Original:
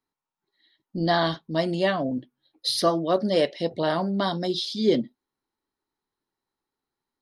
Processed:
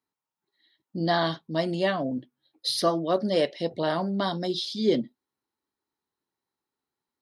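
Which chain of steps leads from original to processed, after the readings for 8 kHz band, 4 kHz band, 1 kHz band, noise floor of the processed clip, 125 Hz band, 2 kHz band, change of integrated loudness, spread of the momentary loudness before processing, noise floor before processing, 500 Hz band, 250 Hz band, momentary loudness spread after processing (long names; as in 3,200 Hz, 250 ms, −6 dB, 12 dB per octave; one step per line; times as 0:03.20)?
−2.0 dB, −2.0 dB, −2.0 dB, below −85 dBFS, −2.0 dB, −2.0 dB, −2.0 dB, 7 LU, below −85 dBFS, −2.0 dB, −2.0 dB, 7 LU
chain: high-pass filter 65 Hz
level −2 dB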